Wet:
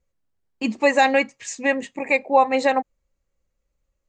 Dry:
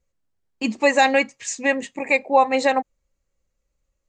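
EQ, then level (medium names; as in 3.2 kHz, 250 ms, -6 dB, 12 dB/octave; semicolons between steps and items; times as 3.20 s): treble shelf 4.3 kHz -5.5 dB; 0.0 dB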